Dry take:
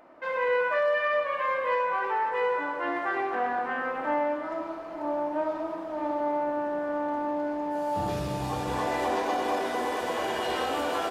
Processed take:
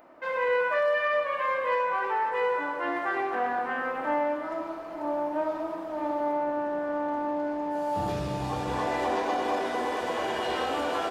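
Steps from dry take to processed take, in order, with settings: treble shelf 11 kHz +9 dB, from 6.33 s -3.5 dB, from 8.12 s -12 dB

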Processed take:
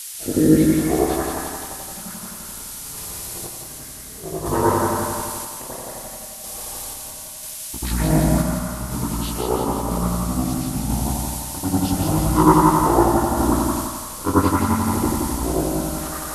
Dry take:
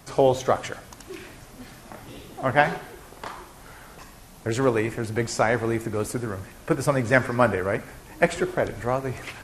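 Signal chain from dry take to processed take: short-time spectra conjugated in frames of 37 ms; gate with hold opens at -37 dBFS; granulator 101 ms, grains 10 per s, spray 16 ms, pitch spread up and down by 0 st; spring tank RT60 1.1 s, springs 49 ms, chirp 25 ms, DRR -8 dB; added noise violet -38 dBFS; random-step tremolo; on a send: thinning echo 98 ms, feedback 57%, high-pass 650 Hz, level -4 dB; on the sum: speed mistake 78 rpm record played at 45 rpm; trim +5 dB

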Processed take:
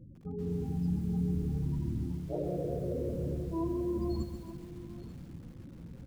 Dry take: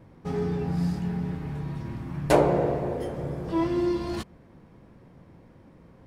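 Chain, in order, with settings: reverse; compression 8:1, threshold -33 dBFS, peak gain reduction 18.5 dB; reverse; tone controls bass +7 dB, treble +12 dB; loudest bins only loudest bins 16; hum notches 50/100/150/200 Hz; on a send: delay 889 ms -16 dB; on the sum: level rider gain up to 5 dB; dynamic bell 130 Hz, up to -5 dB, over -40 dBFS, Q 1.7; bit-crushed delay 136 ms, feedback 55%, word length 8-bit, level -9.5 dB; trim -4 dB

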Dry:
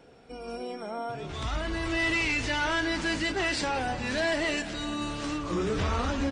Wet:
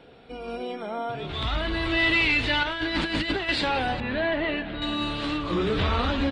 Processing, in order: resonant high shelf 4.8 kHz -8 dB, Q 3; 2.63–3.49 s: compressor with a negative ratio -30 dBFS, ratio -0.5; 4.00–4.82 s: distance through air 440 m; trim +3.5 dB

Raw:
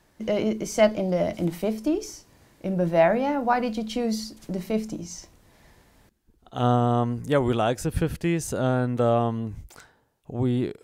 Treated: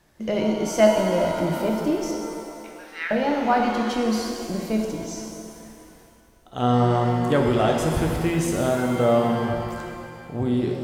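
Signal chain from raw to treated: 2.11–3.11 s: Chebyshev band-pass 1.3–5.7 kHz, order 4; pitch-shifted reverb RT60 2.2 s, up +7 st, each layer -8 dB, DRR 1 dB

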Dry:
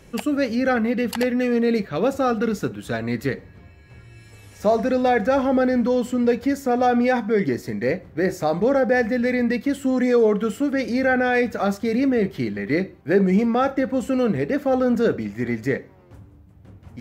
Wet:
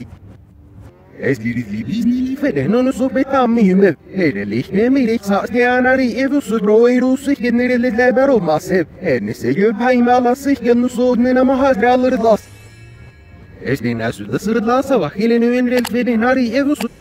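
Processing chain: reverse the whole clip; spectral replace 1.45–2.34 s, 280–1900 Hz before; trim +6.5 dB

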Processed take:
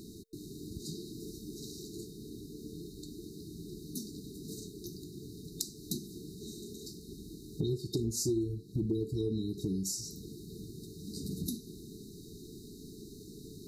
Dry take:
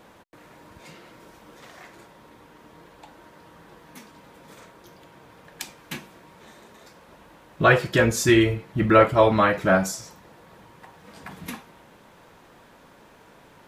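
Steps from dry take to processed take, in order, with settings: FFT band-reject 450–3700 Hz; dynamic bell 170 Hz, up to -6 dB, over -42 dBFS, Q 3.5; compression 4:1, threshold -42 dBFS, peak gain reduction 22.5 dB; trim +8 dB

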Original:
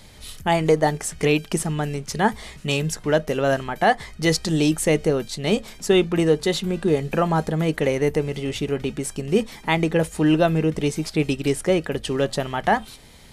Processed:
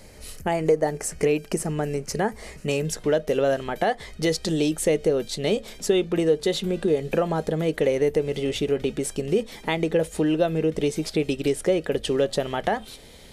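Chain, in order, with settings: peaking EQ 3.5 kHz -12 dB 0.36 oct, from 2.85 s +3 dB; compression 3:1, threshold -23 dBFS, peak gain reduction 8.5 dB; graphic EQ 125/500/1000 Hz -3/+7/-4 dB

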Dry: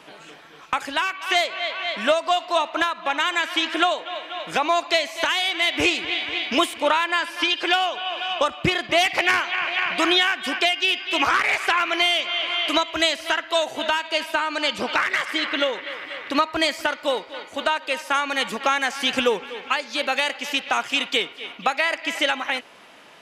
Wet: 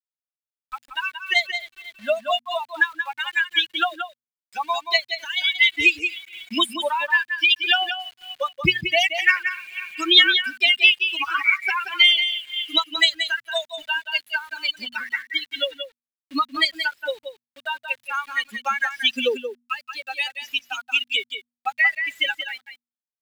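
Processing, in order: expander on every frequency bin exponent 3; bit crusher 9-bit; high-order bell 2.6 kHz +9.5 dB; de-hum 120 Hz, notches 2; on a send: delay 179 ms -8.5 dB; on the sum: trim +1.5 dB

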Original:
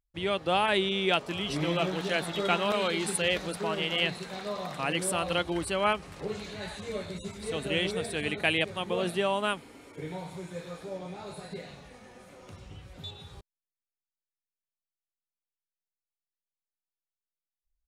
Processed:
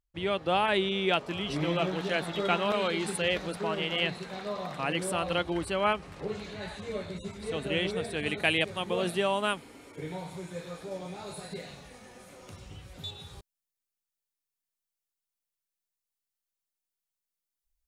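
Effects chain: treble shelf 4.9 kHz -7 dB, from 8.26 s +2 dB, from 10.91 s +7.5 dB

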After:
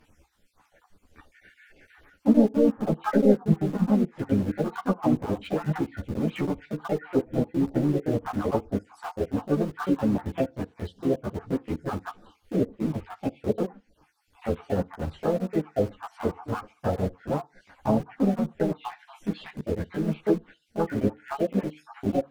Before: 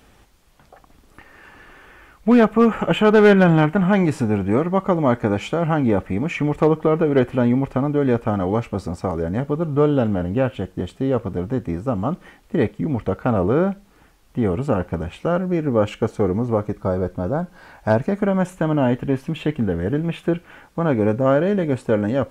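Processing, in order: random holes in the spectrogram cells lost 57%; low-pass that closes with the level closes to 390 Hz, closed at -15.5 dBFS; harmony voices +4 st -6 dB, +5 st -12 dB; FDN reverb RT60 0.31 s, low-frequency decay 1×, high-frequency decay 0.8×, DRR 15 dB; in parallel at -6 dB: small samples zeroed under -24.5 dBFS; on the sum: three-phase chorus; trim -4.5 dB

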